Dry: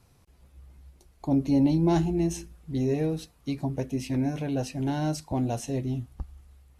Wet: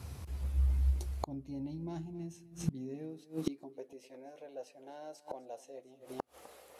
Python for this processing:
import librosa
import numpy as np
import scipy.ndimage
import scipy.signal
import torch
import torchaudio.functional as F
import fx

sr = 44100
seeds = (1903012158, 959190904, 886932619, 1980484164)

y = fx.filter_sweep_highpass(x, sr, from_hz=68.0, to_hz=520.0, start_s=1.6, end_s=4.08, q=3.5)
y = y + 10.0 ** (-18.5 / 20.0) * np.pad(y, (int(254 * sr / 1000.0), 0))[:len(y)]
y = fx.gate_flip(y, sr, shuts_db=-30.0, range_db=-31)
y = y * librosa.db_to_amplitude(11.0)